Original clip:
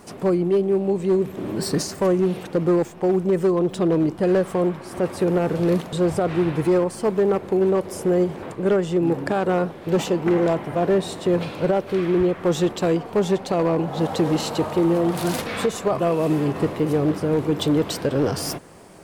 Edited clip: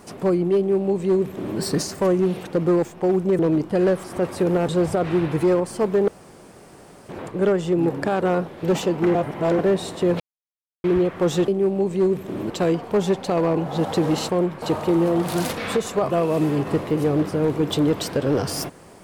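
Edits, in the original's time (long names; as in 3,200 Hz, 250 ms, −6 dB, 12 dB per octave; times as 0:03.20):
0:00.57–0:01.59: duplicate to 0:12.72
0:03.39–0:03.87: remove
0:04.52–0:04.85: move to 0:14.51
0:05.49–0:05.92: remove
0:07.32–0:08.33: fill with room tone
0:10.39–0:10.83: reverse
0:11.44–0:12.08: silence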